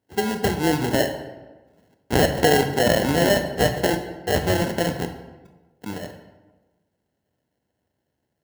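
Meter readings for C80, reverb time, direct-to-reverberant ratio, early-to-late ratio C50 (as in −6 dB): 10.5 dB, 1.2 s, 7.0 dB, 8.5 dB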